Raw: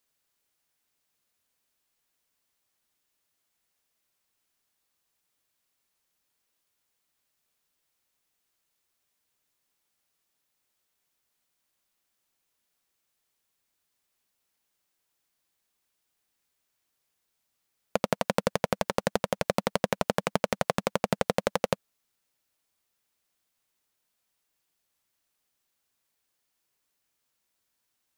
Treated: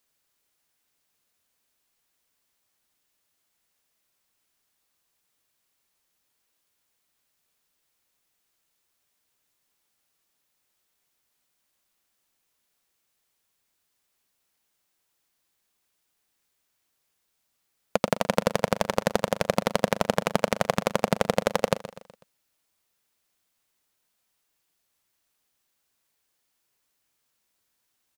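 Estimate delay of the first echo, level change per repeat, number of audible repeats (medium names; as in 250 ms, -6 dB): 124 ms, -6.5 dB, 4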